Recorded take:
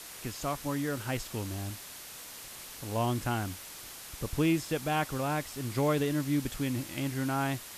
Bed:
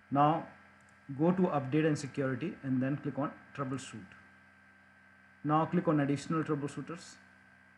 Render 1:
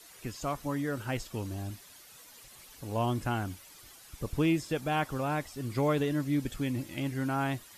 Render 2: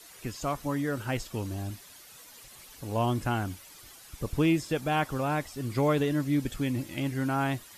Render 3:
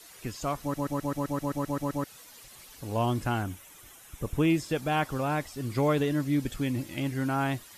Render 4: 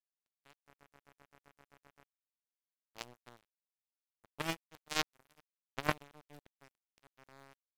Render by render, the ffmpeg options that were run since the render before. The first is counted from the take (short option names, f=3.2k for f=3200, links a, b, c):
-af "afftdn=nr=11:nf=-46"
-af "volume=2.5dB"
-filter_complex "[0:a]asettb=1/sr,asplit=3[a][b][c];[a]atrim=end=3.424[d];[b]atrim=start=3.42:end=4.5,asetpts=PTS-STARTPTS,afade=t=in:d=0.004:c=qsin,afade=t=out:st=1.076:d=0.004:c=qsin,equalizer=f=4.6k:t=o:w=0.35:g=-12[e];[c]atrim=start=4.496[f];[d][e]acrossfade=d=0.004:c1=hsin:c2=qsin[g];[g][f]acrossfade=d=0.004:c1=qsin:c2=hsin,asplit=12[h][i][j][k][l][m][n][o][p][q][r][s];[h]atrim=end=0.742[t];[i]atrim=start=0.608:end=0.742[u];[j]atrim=start=0.608:end=0.742[v];[k]atrim=start=0.608:end=0.742[w];[l]atrim=start=0.608:end=0.742[x];[m]atrim=start=0.608:end=0.742[y];[n]atrim=start=0.608:end=0.742[z];[o]atrim=start=0.608:end=0.742[aa];[p]atrim=start=0.608:end=0.742[ab];[q]atrim=start=0.608:end=0.742[ac];[r]atrim=start=0.608:end=0.742[ad];[s]atrim=start=2.038[ae];[t][u]acrossfade=d=0.004:c1=hsin:c2=hsin[af];[af][v]acrossfade=d=0.004:c1=hsin:c2=hsin[ag];[ag][w]acrossfade=d=0.004:c1=hsin:c2=hsin[ah];[ah][x]acrossfade=d=0.004:c1=hsin:c2=hsin[ai];[ai][y]acrossfade=d=0.004:c1=hsin:c2=hsin[aj];[aj][z]acrossfade=d=0.004:c1=hsin:c2=hsin[ak];[ak][aa]acrossfade=d=0.004:c1=hsin:c2=hsin[al];[al][ab]acrossfade=d=0.004:c1=hsin:c2=hsin[am];[am][ac]acrossfade=d=0.004:c1=hsin:c2=hsin[an];[an][ad]acrossfade=d=0.004:c1=hsin:c2=hsin[ao];[ao][ae]acrossfade=d=0.004:c1=hsin:c2=hsin"
-af "aeval=exprs='0.211*(cos(1*acos(clip(val(0)/0.211,-1,1)))-cos(1*PI/2))+0.0376*(cos(2*acos(clip(val(0)/0.211,-1,1)))-cos(2*PI/2))+0.00841*(cos(3*acos(clip(val(0)/0.211,-1,1)))-cos(3*PI/2))+0.00531*(cos(5*acos(clip(val(0)/0.211,-1,1)))-cos(5*PI/2))+0.0106*(cos(8*acos(clip(val(0)/0.211,-1,1)))-cos(8*PI/2))':c=same,acrusher=bits=2:mix=0:aa=0.5"